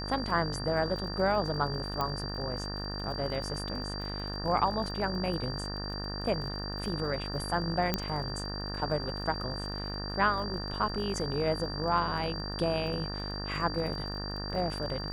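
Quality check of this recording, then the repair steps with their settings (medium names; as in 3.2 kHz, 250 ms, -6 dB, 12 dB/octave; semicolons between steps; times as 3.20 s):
buzz 50 Hz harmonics 37 -38 dBFS
crackle 32 per s -40 dBFS
whine 4.7 kHz -39 dBFS
2.01 s: pop -18 dBFS
7.94 s: pop -12 dBFS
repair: de-click; band-stop 4.7 kHz, Q 30; de-hum 50 Hz, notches 37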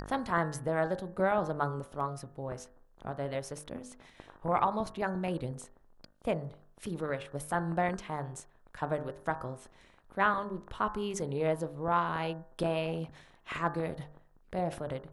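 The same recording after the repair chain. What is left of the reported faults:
2.01 s: pop
7.94 s: pop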